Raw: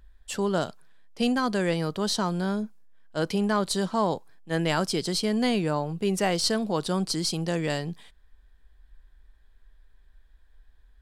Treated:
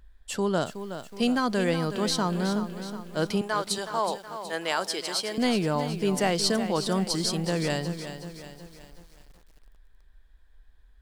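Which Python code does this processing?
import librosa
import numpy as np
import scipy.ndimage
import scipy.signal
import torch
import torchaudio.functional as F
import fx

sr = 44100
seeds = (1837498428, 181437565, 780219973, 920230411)

y = fx.highpass(x, sr, hz=540.0, slope=12, at=(3.41, 5.38))
y = fx.echo_crushed(y, sr, ms=370, feedback_pct=55, bits=8, wet_db=-10)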